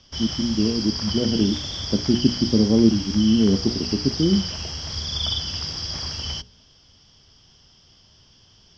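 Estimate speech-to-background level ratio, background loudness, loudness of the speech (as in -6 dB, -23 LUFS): 5.5 dB, -27.0 LUFS, -21.5 LUFS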